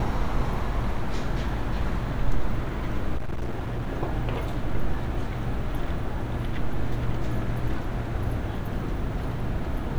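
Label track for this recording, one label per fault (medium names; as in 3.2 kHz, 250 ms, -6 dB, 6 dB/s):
3.170000	3.880000	clipped -24.5 dBFS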